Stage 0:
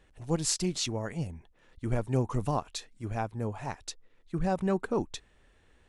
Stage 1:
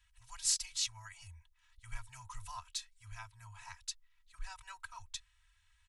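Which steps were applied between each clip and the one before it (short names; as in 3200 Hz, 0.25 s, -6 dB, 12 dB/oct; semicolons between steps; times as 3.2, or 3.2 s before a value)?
elliptic band-stop 100–940 Hz, stop band 40 dB; passive tone stack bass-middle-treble 5-5-5; comb 3.1 ms, depth 95%; gain +2 dB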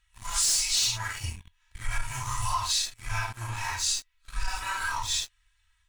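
phase scrambler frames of 0.2 s; sample leveller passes 3; compressor, threshold -31 dBFS, peak gain reduction 7 dB; gain +8 dB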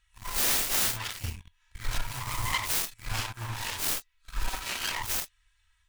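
self-modulated delay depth 0.64 ms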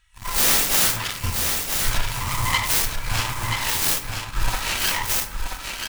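echo 0.98 s -5.5 dB; on a send at -7.5 dB: reverb RT60 1.5 s, pre-delay 3 ms; on the sum: gain +7.5 dB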